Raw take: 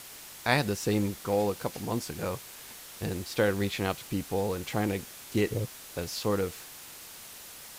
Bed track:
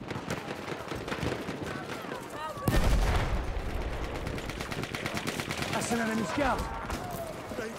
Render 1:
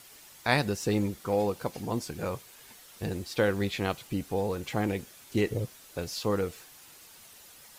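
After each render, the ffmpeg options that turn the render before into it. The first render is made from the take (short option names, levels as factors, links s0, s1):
-af "afftdn=nr=8:nf=-47"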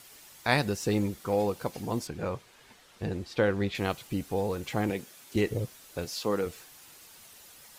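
-filter_complex "[0:a]asettb=1/sr,asplit=3[s0][s1][s2];[s0]atrim=end=2.074[s3];[s1]atrim=start=2.07:end=3.75,asetpts=PTS-STARTPTS,afade=t=in:d=0.004:c=qsin,afade=t=out:st=1.676:d=0.004:c=qsin,aemphasis=mode=reproduction:type=50fm[s4];[s2]atrim=start=3.746[s5];[s3][s4]acrossfade=d=0.004:c1=hsin:c2=qsin[s6];[s6][s5]acrossfade=d=0.004:c1=qsin:c2=hsin,asettb=1/sr,asplit=3[s7][s8][s9];[s7]atrim=end=4.904[s10];[s8]atrim=start=4.9:end=5.36,asetpts=PTS-STARTPTS,afade=t=in:d=0.004:c=qsin,afade=t=out:st=0.456:d=0.004:c=qsin,highpass=140[s11];[s9]atrim=start=5.356[s12];[s10][s11]acrossfade=d=0.004:c1=hsin:c2=qsin[s13];[s13][s12]acrossfade=d=0.004:c1=qsin:c2=hsin,asettb=1/sr,asplit=3[s14][s15][s16];[s14]atrim=end=6.054[s17];[s15]atrim=start=6.05:end=6.46,asetpts=PTS-STARTPTS,afade=t=in:d=0.004:c=qsin,afade=t=out:st=0.406:d=0.004:c=qsin,highpass=170[s18];[s16]atrim=start=6.456[s19];[s17][s18]acrossfade=d=0.004:c1=hsin:c2=qsin[s20];[s20][s19]acrossfade=d=0.004:c1=qsin:c2=hsin"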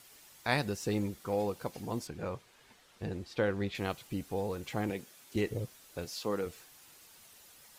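-af "volume=0.562"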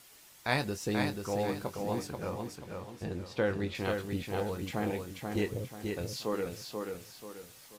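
-filter_complex "[0:a]asplit=2[s0][s1];[s1]adelay=23,volume=0.299[s2];[s0][s2]amix=inputs=2:normalize=0,aecho=1:1:485|970|1455|1940|2425:0.596|0.22|0.0815|0.0302|0.0112"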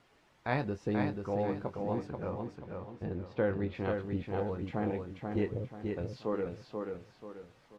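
-af "lowpass=f=1400:p=1,aemphasis=mode=reproduction:type=50fm"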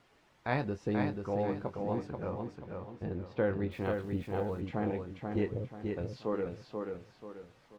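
-filter_complex "[0:a]asettb=1/sr,asplit=3[s0][s1][s2];[s0]atrim=end=3.714[s3];[s1]atrim=start=3.71:end=4.61,asetpts=PTS-STARTPTS,afade=t=in:d=0.004:c=qsin,afade=t=out:st=0.896:d=0.004:c=qsin,aeval=exprs='val(0)*gte(abs(val(0)),0.00188)':c=same[s4];[s2]atrim=start=4.606[s5];[s3][s4]acrossfade=d=0.004:c1=hsin:c2=qsin[s6];[s6][s5]acrossfade=d=0.004:c1=qsin:c2=hsin"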